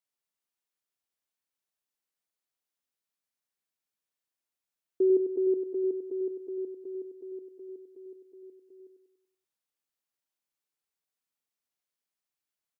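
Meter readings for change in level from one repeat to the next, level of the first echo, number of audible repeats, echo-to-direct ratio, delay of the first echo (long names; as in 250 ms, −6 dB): −6.5 dB, −7.5 dB, 5, −6.5 dB, 96 ms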